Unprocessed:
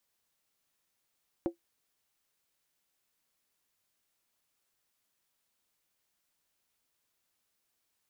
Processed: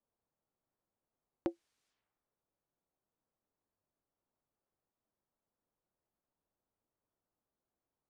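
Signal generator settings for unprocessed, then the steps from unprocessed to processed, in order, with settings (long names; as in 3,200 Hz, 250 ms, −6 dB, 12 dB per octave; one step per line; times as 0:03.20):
struck skin, lowest mode 340 Hz, decay 0.12 s, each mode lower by 8 dB, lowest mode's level −23 dB
low-pass that shuts in the quiet parts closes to 670 Hz, open at −53.5 dBFS
low-pass filter 7,900 Hz
low-pass that shuts in the quiet parts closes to 1,900 Hz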